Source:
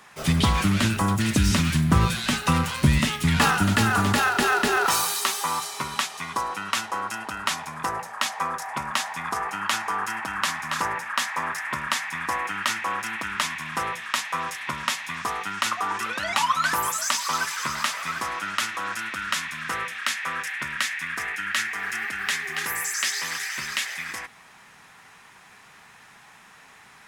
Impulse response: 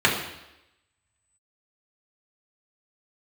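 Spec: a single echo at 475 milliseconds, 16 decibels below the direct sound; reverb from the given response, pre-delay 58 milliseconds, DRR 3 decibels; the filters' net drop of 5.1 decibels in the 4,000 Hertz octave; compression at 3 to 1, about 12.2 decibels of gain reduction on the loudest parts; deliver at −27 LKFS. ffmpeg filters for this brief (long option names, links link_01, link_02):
-filter_complex "[0:a]equalizer=frequency=4000:width_type=o:gain=-7,acompressor=threshold=-31dB:ratio=3,aecho=1:1:475:0.158,asplit=2[link_01][link_02];[1:a]atrim=start_sample=2205,adelay=58[link_03];[link_02][link_03]afir=irnorm=-1:irlink=0,volume=-22dB[link_04];[link_01][link_04]amix=inputs=2:normalize=0,volume=4dB"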